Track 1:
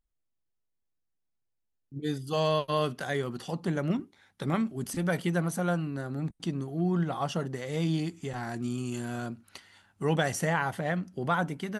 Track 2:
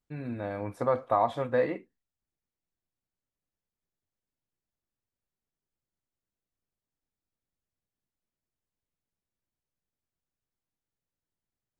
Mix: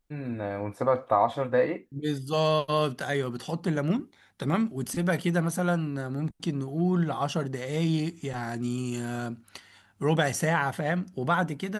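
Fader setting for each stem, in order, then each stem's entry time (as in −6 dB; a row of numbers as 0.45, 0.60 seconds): +2.5, +2.5 decibels; 0.00, 0.00 seconds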